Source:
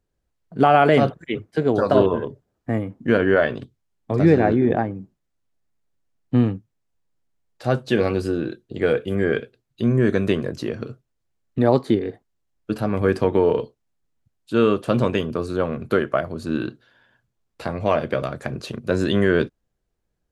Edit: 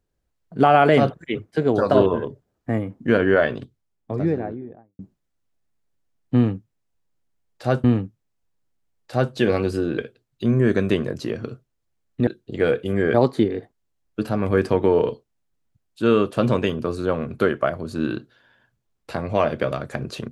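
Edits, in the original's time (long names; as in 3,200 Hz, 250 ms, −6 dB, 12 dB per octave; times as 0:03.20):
0:03.49–0:04.99: fade out and dull
0:06.35–0:07.84: repeat, 2 plays
0:08.49–0:09.36: move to 0:11.65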